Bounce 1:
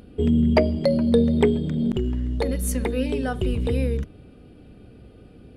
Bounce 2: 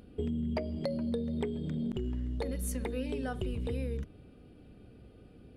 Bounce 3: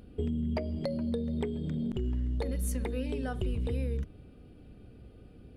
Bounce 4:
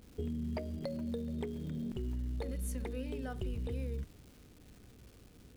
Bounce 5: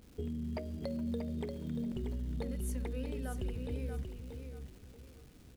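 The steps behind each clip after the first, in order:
compression 6:1, threshold -23 dBFS, peak gain reduction 11 dB; trim -7.5 dB
bass shelf 93 Hz +6.5 dB
crackle 550 per s -45 dBFS; trim -6 dB
feedback delay 634 ms, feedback 26%, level -7 dB; trim -1 dB

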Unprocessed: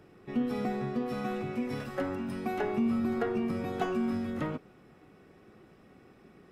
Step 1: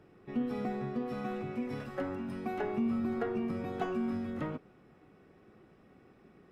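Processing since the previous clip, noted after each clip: treble shelf 4 kHz -7 dB; trim -3 dB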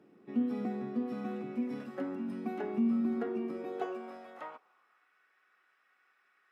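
high-pass sweep 230 Hz -> 1.5 kHz, 3.18–5.09 s; trim -5 dB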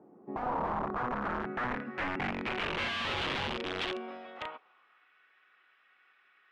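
integer overflow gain 33 dB; low-pass sweep 850 Hz -> 3.2 kHz, 0.28–3.00 s; trim +2.5 dB

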